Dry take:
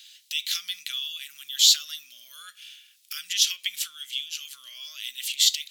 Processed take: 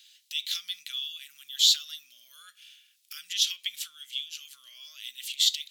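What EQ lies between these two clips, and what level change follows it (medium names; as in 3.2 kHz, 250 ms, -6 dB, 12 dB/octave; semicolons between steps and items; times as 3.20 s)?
dynamic bell 3.6 kHz, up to +6 dB, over -35 dBFS, Q 2.5; -7.0 dB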